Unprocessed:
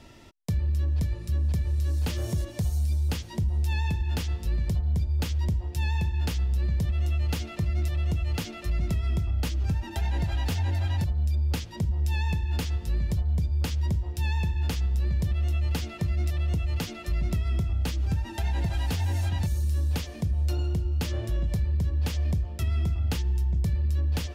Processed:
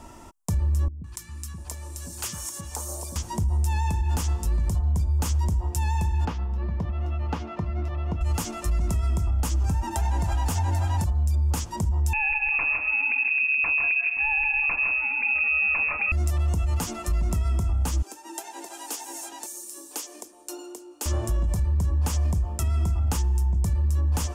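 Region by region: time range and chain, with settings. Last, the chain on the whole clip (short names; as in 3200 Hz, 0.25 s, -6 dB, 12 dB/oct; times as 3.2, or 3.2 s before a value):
0.88–3.16 HPF 150 Hz 6 dB/oct + low shelf 440 Hz -10.5 dB + three bands offset in time lows, highs, mids 0.16/0.7 s, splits 300/1100 Hz
6.25–8.21 HPF 150 Hz 6 dB/oct + air absorption 290 m
12.13–16.12 tapped delay 0.136/0.16 s -9/-3.5 dB + inverted band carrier 2600 Hz
18.02–21.06 elliptic high-pass 310 Hz, stop band 50 dB + bell 940 Hz -10.5 dB 2.6 oct
whole clip: graphic EQ 125/500/1000/2000/4000/8000 Hz -7/-5/+9/-7/-12/+7 dB; limiter -25 dBFS; dynamic EQ 6100 Hz, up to +4 dB, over -59 dBFS, Q 0.75; gain +7 dB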